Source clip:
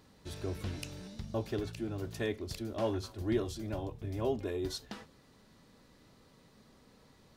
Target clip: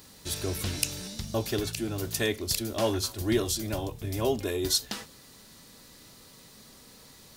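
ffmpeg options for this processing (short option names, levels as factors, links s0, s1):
-af "crystalizer=i=4.5:c=0,volume=1.78"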